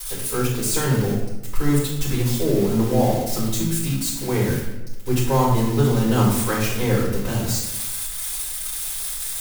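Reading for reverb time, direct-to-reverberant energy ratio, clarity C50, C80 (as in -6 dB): 1.0 s, -10.5 dB, 2.0 dB, 5.0 dB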